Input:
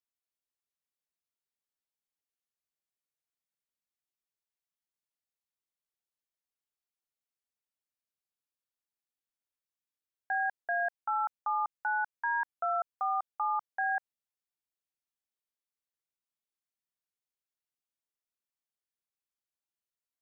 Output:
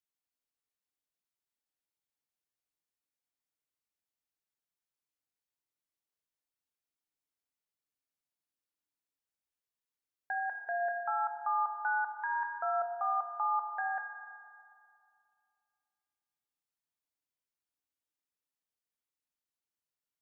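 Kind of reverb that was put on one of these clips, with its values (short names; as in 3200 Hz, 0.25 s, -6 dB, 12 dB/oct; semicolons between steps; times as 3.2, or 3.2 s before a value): FDN reverb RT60 2.4 s, low-frequency decay 1.4×, high-frequency decay 0.3×, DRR 4.5 dB; gain -2.5 dB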